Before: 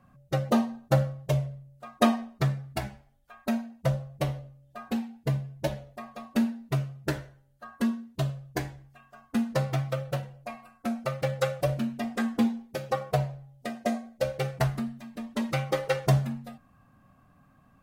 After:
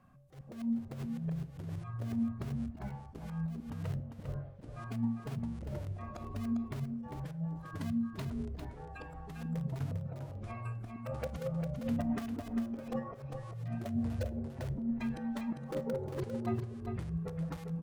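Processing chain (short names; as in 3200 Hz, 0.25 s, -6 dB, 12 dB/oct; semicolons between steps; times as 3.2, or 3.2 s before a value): treble ducked by the level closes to 350 Hz, closed at -25 dBFS; spectral noise reduction 13 dB; in parallel at -7.5 dB: wrapped overs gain 24.5 dB; on the sum: negative-ratio compressor -35 dBFS, ratio -1; auto swell 0.246 s; echoes that change speed 0.3 s, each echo -6 st, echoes 2; echo 0.4 s -6.5 dB; on a send at -14.5 dB: reverb RT60 0.85 s, pre-delay 3 ms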